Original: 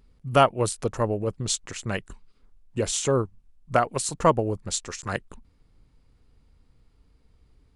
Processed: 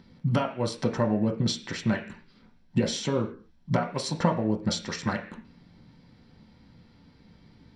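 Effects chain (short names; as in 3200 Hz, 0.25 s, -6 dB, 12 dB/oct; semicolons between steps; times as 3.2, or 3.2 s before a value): band shelf 2400 Hz +13 dB; compressor 8:1, threshold -32 dBFS, peak gain reduction 23.5 dB; reverb RT60 0.40 s, pre-delay 3 ms, DRR 1.5 dB; gain -3.5 dB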